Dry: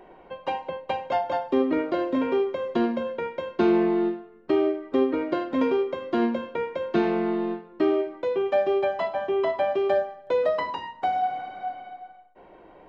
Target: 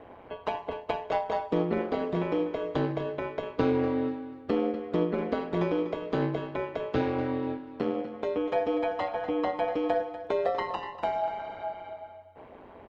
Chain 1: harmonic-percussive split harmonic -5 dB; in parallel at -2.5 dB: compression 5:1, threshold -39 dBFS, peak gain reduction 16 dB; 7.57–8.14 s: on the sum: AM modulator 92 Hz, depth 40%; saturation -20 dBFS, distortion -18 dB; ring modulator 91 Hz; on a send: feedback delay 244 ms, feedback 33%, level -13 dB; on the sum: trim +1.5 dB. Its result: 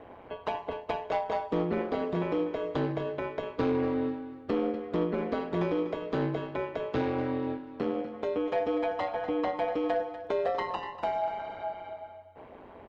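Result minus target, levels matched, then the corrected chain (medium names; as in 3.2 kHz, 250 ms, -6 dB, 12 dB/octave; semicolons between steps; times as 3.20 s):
saturation: distortion +19 dB
harmonic-percussive split harmonic -5 dB; in parallel at -2.5 dB: compression 5:1, threshold -39 dBFS, peak gain reduction 16 dB; 7.57–8.14 s: on the sum: AM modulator 92 Hz, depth 40%; saturation -8.5 dBFS, distortion -37 dB; ring modulator 91 Hz; on a send: feedback delay 244 ms, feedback 33%, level -13 dB; on the sum: trim +1.5 dB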